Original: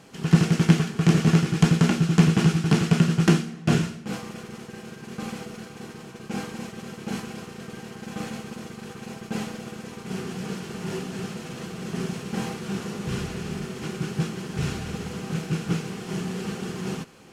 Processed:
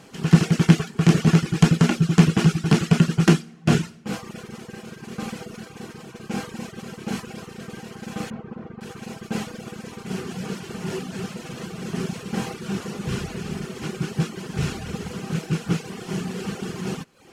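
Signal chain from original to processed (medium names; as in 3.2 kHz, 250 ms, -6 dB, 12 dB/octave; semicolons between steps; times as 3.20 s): reverb removal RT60 0.66 s; 8.30–8.81 s: low-pass 1.3 kHz 12 dB/octave; trim +3 dB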